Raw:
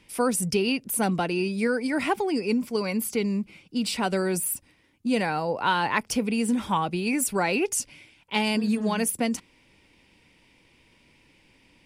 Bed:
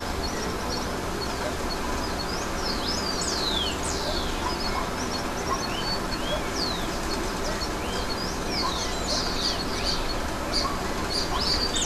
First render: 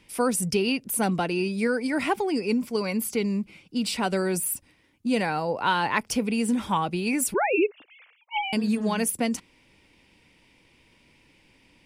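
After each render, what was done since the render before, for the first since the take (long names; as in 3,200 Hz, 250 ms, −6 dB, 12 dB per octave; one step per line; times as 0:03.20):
0:07.34–0:08.53: three sine waves on the formant tracks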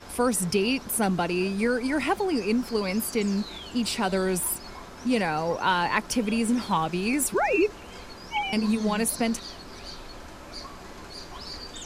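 mix in bed −14 dB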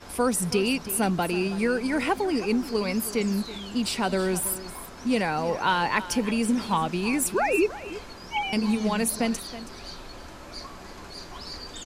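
single-tap delay 323 ms −15 dB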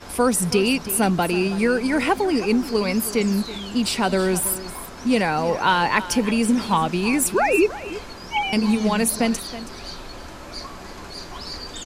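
level +5 dB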